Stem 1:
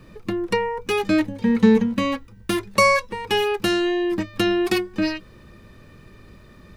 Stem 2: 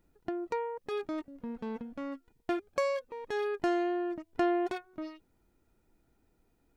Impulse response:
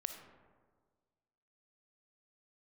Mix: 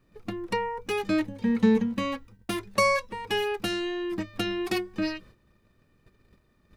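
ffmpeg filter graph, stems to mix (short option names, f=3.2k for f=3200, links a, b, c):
-filter_complex "[0:a]agate=range=-13dB:threshold=-43dB:ratio=16:detection=peak,volume=-6.5dB[a];[1:a]volume=-1,volume=-4dB[b];[a][b]amix=inputs=2:normalize=0"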